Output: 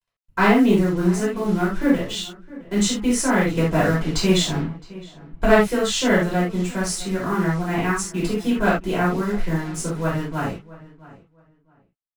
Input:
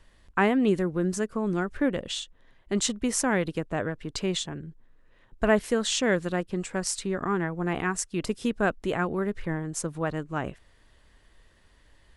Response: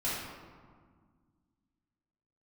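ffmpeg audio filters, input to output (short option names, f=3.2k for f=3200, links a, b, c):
-filter_complex "[0:a]acrusher=bits=6:mix=0:aa=0.5,aeval=exprs='0.422*(cos(1*acos(clip(val(0)/0.422,-1,1)))-cos(1*PI/2))+0.0596*(cos(3*acos(clip(val(0)/0.422,-1,1)))-cos(3*PI/2))':c=same,asettb=1/sr,asplit=3[a][b][c];[a]atrim=end=3.504[d];[b]atrim=start=3.5:end=4.65,asetpts=PTS-STARTPTS,afade=t=in:d=0.004:c=qsin,afade=t=out:st=1.146:d=0.004:c=qsin,acontrast=32[e];[c]atrim=start=4.646[f];[d][e]acrossfade=d=0.004:c1=hsin:c2=qsin[g];[g][f]acrossfade=d=0.004:c1=qsin:c2=hsin,asplit=2[h][i];[i]adelay=664,lowpass=f=2.6k:p=1,volume=-19dB,asplit=2[j][k];[k]adelay=664,lowpass=f=2.6k:p=1,volume=0.22[l];[h][j][l]amix=inputs=3:normalize=0[m];[1:a]atrim=start_sample=2205,atrim=end_sample=3969[n];[m][n]afir=irnorm=-1:irlink=0,volume=5dB"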